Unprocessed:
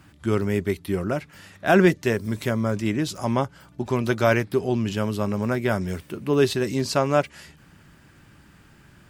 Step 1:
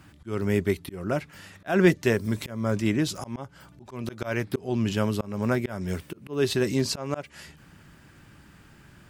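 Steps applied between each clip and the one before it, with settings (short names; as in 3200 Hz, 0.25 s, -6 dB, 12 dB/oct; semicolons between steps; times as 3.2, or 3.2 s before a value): auto swell 0.266 s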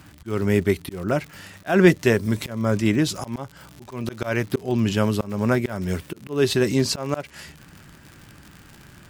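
crackle 99/s -37 dBFS; gain +4.5 dB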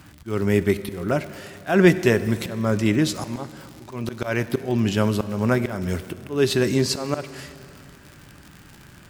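plate-style reverb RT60 2.6 s, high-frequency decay 0.85×, DRR 13 dB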